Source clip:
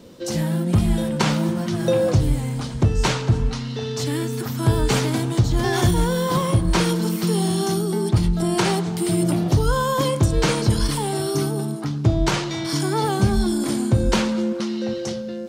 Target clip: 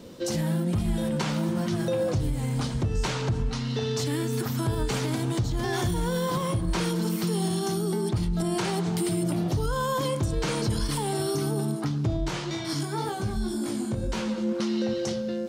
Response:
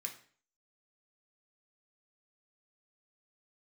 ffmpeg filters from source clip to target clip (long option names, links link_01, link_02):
-filter_complex "[0:a]alimiter=limit=-18.5dB:level=0:latency=1:release=178,asplit=3[link_01][link_02][link_03];[link_01]afade=type=out:start_time=12.23:duration=0.02[link_04];[link_02]flanger=delay=17:depth=5.6:speed=1.9,afade=type=in:start_time=12.23:duration=0.02,afade=type=out:start_time=14.47:duration=0.02[link_05];[link_03]afade=type=in:start_time=14.47:duration=0.02[link_06];[link_04][link_05][link_06]amix=inputs=3:normalize=0"